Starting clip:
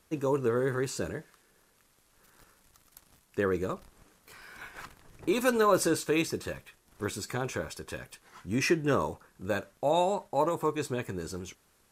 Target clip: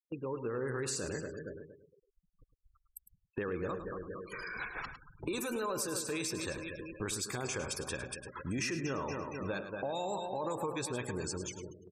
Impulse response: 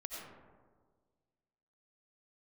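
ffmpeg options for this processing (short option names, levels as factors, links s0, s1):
-filter_complex "[0:a]asplit=2[s0][s1];[s1]asoftclip=type=tanh:threshold=0.112,volume=0.473[s2];[s0][s2]amix=inputs=2:normalize=0,dynaudnorm=f=140:g=9:m=3.98,asplit=2[s3][s4];[s4]aecho=0:1:232|464|696|928|1160:0.237|0.116|0.0569|0.0279|0.0137[s5];[s3][s5]amix=inputs=2:normalize=0,alimiter=limit=0.282:level=0:latency=1:release=31,afftfilt=real='re*gte(hypot(re,im),0.0282)':imag='im*gte(hypot(re,im),0.0282)':win_size=1024:overlap=0.75,agate=range=0.398:threshold=0.0112:ratio=16:detection=peak,crystalizer=i=3:c=0,acompressor=threshold=0.0224:ratio=2.5,highshelf=f=10000:g=-8.5,asplit=2[s6][s7];[s7]adelay=105,volume=0.316,highshelf=f=4000:g=-2.36[s8];[s6][s8]amix=inputs=2:normalize=0,volume=0.473"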